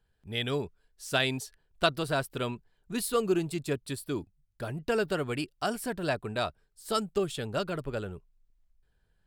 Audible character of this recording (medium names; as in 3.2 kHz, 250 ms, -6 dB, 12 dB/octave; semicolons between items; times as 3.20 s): noise floor -74 dBFS; spectral tilt -4.5 dB/octave